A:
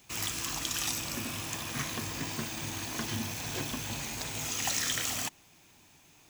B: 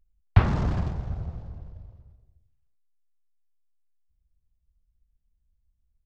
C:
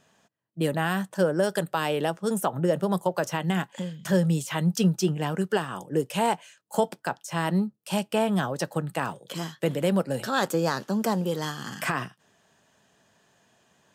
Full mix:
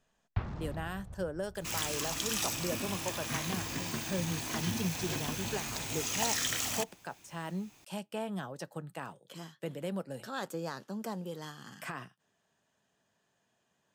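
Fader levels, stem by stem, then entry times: -1.0 dB, -15.5 dB, -13.0 dB; 1.55 s, 0.00 s, 0.00 s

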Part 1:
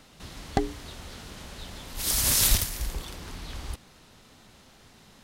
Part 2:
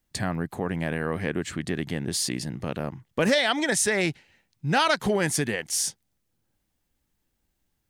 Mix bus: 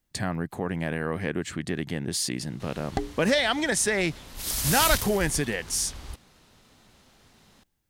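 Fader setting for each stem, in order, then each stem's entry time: -3.5 dB, -1.0 dB; 2.40 s, 0.00 s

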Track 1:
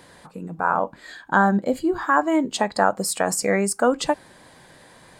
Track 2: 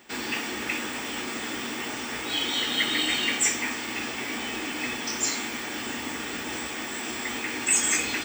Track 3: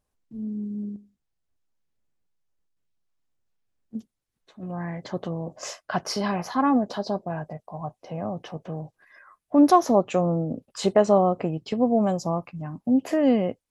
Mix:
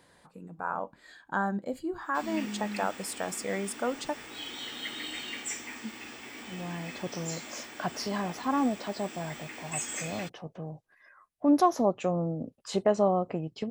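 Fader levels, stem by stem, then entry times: -12.0 dB, -12.5 dB, -6.0 dB; 0.00 s, 2.05 s, 1.90 s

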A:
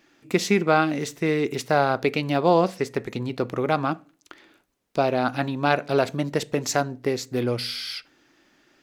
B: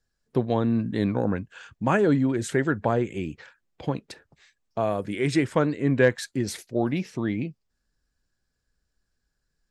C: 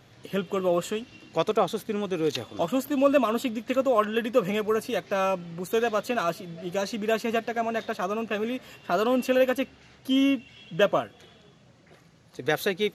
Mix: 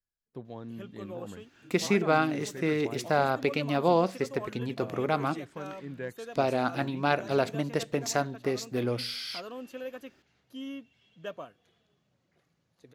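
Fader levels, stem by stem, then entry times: -5.0 dB, -18.5 dB, -17.5 dB; 1.40 s, 0.00 s, 0.45 s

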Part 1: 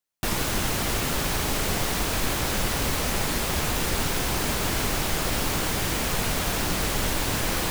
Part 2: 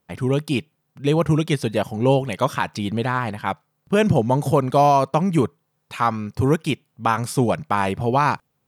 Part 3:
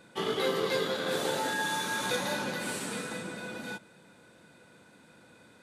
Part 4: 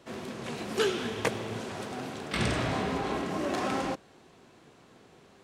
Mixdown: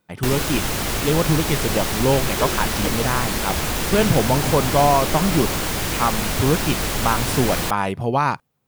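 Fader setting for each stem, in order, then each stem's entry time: +2.5 dB, -1.0 dB, -17.5 dB, -1.5 dB; 0.00 s, 0.00 s, 0.00 s, 1.60 s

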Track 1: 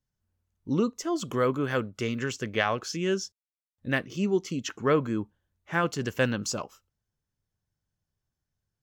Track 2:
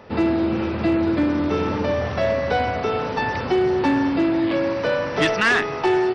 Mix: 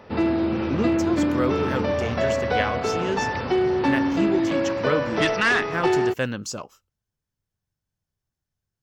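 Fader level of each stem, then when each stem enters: -0.5 dB, -2.0 dB; 0.00 s, 0.00 s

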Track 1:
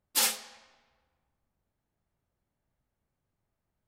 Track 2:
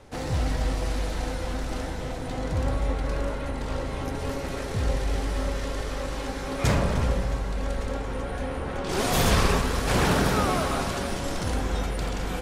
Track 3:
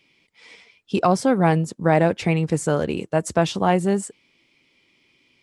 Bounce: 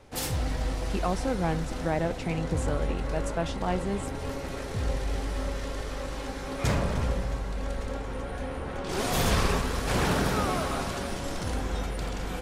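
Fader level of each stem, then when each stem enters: -8.5 dB, -3.5 dB, -11.0 dB; 0.00 s, 0.00 s, 0.00 s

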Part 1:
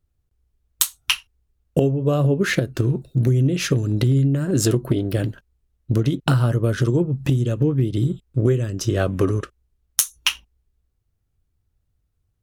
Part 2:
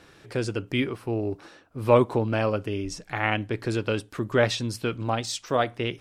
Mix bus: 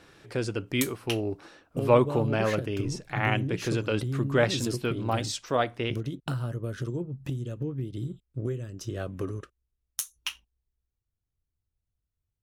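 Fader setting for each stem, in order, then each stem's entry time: -13.5 dB, -2.0 dB; 0.00 s, 0.00 s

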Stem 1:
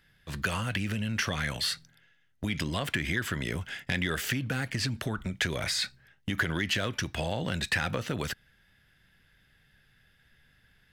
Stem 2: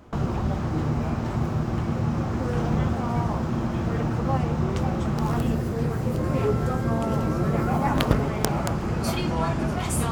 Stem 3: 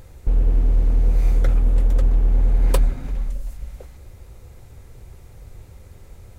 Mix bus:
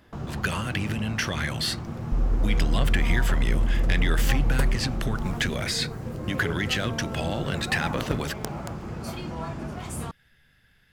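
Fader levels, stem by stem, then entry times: +2.0 dB, -8.5 dB, -6.5 dB; 0.00 s, 0.00 s, 1.85 s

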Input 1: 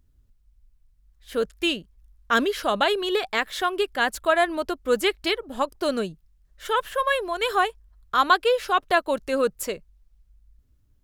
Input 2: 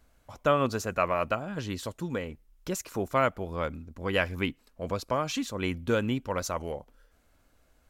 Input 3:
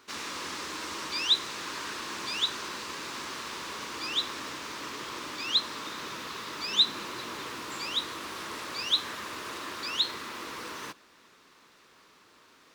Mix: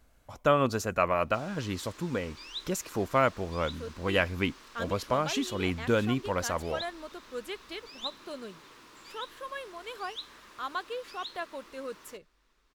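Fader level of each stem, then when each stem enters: -16.5 dB, +0.5 dB, -15.0 dB; 2.45 s, 0.00 s, 1.25 s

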